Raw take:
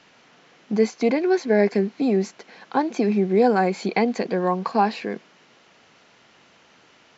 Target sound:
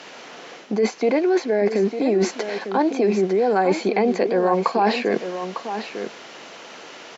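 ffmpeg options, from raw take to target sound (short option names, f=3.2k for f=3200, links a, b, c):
-filter_complex "[0:a]highpass=120,aemphasis=mode=reproduction:type=cd,acrossover=split=3600[a][b];[b]acompressor=threshold=-51dB:ratio=4:attack=1:release=60[c];[a][c]amix=inputs=2:normalize=0,equalizer=f=480:t=o:w=2.6:g=13.5,alimiter=limit=-3.5dB:level=0:latency=1:release=26,areverse,acompressor=threshold=-20dB:ratio=6,areverse,crystalizer=i=9.5:c=0,asplit=2[d][e];[e]aecho=0:1:902:0.335[f];[d][f]amix=inputs=2:normalize=0,volume=1.5dB"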